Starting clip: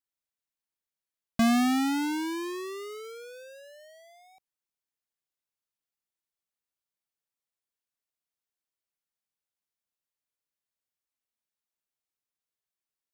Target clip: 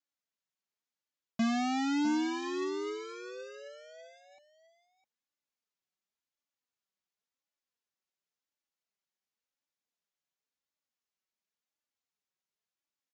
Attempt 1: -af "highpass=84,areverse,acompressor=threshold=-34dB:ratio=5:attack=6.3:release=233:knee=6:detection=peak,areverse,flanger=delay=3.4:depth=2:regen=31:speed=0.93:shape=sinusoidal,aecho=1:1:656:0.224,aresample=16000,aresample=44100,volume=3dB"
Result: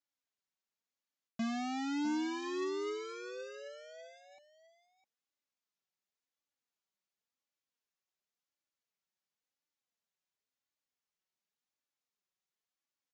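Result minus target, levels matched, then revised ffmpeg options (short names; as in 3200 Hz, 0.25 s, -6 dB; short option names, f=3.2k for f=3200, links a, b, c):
compressor: peak gain reduction +6.5 dB
-af "highpass=84,areverse,acompressor=threshold=-26dB:ratio=5:attack=6.3:release=233:knee=6:detection=peak,areverse,flanger=delay=3.4:depth=2:regen=31:speed=0.93:shape=sinusoidal,aecho=1:1:656:0.224,aresample=16000,aresample=44100,volume=3dB"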